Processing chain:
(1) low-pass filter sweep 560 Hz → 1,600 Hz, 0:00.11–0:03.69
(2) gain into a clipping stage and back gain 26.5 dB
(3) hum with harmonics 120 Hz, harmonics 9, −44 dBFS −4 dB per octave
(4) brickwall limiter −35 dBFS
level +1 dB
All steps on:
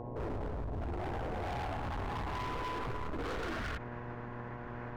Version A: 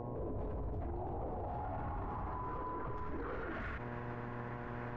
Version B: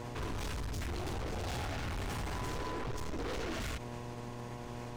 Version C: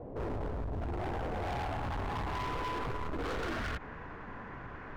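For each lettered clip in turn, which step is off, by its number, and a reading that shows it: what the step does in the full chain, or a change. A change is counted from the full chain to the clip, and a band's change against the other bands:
2, distortion level −6 dB
1, 8 kHz band +12.5 dB
3, change in integrated loudness +1.5 LU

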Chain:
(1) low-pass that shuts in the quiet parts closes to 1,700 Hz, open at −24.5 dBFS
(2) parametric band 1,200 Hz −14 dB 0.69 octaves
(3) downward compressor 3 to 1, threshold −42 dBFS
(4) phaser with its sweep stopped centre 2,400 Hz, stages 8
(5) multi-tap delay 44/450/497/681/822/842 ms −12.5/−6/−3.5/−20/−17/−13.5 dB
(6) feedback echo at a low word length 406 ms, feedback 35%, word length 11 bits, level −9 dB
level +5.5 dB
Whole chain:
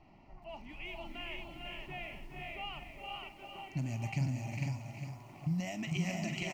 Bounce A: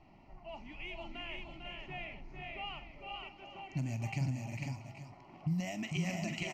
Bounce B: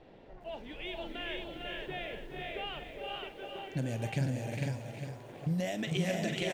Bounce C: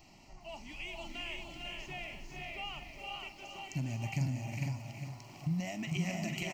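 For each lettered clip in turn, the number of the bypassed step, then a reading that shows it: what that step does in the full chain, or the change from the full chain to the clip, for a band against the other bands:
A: 6, change in momentary loudness spread +1 LU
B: 4, 500 Hz band +7.0 dB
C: 1, 8 kHz band +2.0 dB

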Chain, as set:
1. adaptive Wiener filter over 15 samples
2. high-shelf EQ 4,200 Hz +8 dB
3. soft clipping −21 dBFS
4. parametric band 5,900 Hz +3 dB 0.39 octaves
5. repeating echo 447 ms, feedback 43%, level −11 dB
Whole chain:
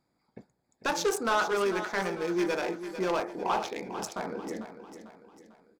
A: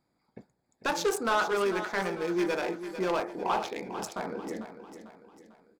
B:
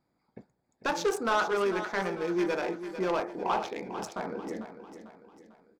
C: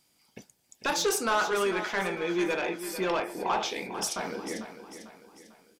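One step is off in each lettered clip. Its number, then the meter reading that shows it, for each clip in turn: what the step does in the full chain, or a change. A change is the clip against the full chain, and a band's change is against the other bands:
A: 4, 8 kHz band −1.5 dB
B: 2, 8 kHz band −5.0 dB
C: 1, 8 kHz band +5.5 dB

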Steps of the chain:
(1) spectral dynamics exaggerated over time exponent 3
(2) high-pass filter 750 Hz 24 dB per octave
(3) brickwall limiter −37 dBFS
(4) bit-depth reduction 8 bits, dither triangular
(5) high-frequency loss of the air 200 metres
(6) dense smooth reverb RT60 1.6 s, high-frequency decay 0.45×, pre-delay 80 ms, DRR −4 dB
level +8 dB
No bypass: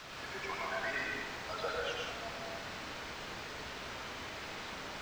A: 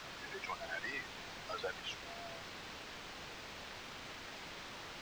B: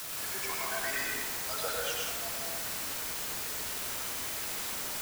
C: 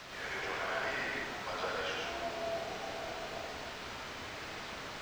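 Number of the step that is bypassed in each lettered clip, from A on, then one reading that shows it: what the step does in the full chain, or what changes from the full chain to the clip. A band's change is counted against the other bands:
6, change in integrated loudness −5.0 LU
5, 8 kHz band +16.5 dB
1, 500 Hz band +2.0 dB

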